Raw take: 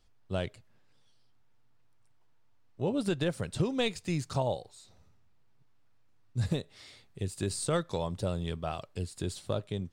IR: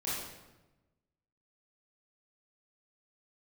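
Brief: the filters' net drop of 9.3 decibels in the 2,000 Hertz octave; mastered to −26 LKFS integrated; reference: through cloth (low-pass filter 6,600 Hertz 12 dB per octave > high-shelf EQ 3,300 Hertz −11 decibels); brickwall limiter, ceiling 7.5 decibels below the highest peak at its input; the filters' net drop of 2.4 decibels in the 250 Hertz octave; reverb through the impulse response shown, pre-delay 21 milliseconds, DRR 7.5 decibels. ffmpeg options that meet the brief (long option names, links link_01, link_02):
-filter_complex "[0:a]equalizer=frequency=250:width_type=o:gain=-3.5,equalizer=frequency=2000:width_type=o:gain=-8.5,alimiter=level_in=3.5dB:limit=-24dB:level=0:latency=1,volume=-3.5dB,asplit=2[link_01][link_02];[1:a]atrim=start_sample=2205,adelay=21[link_03];[link_02][link_03]afir=irnorm=-1:irlink=0,volume=-12dB[link_04];[link_01][link_04]amix=inputs=2:normalize=0,lowpass=6600,highshelf=frequency=3300:gain=-11,volume=13dB"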